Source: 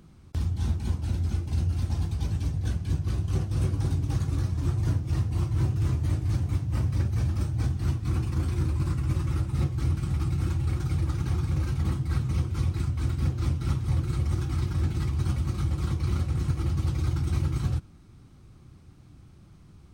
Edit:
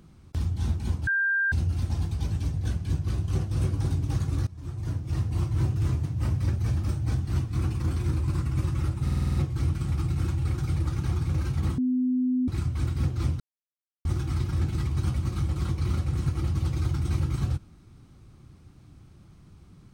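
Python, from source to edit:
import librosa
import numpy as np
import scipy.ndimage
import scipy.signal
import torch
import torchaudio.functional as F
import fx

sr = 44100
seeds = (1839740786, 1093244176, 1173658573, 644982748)

y = fx.edit(x, sr, fx.bleep(start_s=1.07, length_s=0.45, hz=1590.0, db=-21.5),
    fx.fade_in_from(start_s=4.47, length_s=0.83, floor_db=-18.5),
    fx.cut(start_s=6.05, length_s=0.52),
    fx.stutter(start_s=9.56, slice_s=0.05, count=7),
    fx.bleep(start_s=12.0, length_s=0.7, hz=253.0, db=-21.5),
    fx.silence(start_s=13.62, length_s=0.65), tone=tone)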